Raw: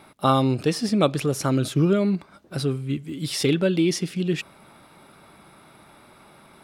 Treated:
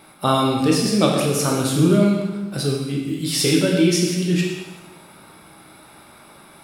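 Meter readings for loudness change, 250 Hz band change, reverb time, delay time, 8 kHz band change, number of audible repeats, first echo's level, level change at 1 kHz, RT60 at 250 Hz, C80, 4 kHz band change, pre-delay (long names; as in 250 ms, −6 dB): +4.0 dB, +4.5 dB, 1.2 s, no echo audible, +9.0 dB, no echo audible, no echo audible, +2.5 dB, 1.1 s, 4.0 dB, +6.5 dB, 8 ms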